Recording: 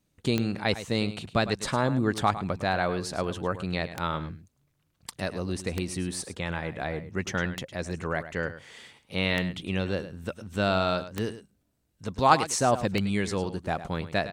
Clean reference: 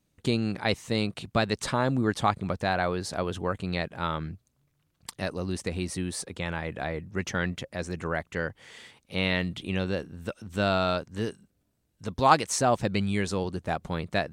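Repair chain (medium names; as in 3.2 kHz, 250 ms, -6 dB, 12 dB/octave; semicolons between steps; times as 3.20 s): de-click; inverse comb 105 ms -13 dB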